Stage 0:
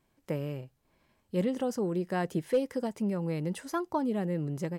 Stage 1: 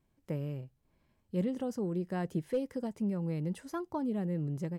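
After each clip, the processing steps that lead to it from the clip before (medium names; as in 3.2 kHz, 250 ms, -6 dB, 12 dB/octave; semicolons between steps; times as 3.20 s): bass shelf 270 Hz +10 dB; trim -8 dB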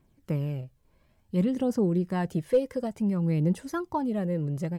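phaser 0.57 Hz, delay 2.1 ms, feedback 39%; trim +6 dB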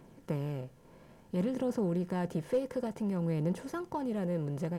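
spectral levelling over time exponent 0.6; trim -8.5 dB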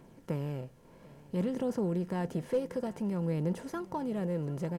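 delay 745 ms -21 dB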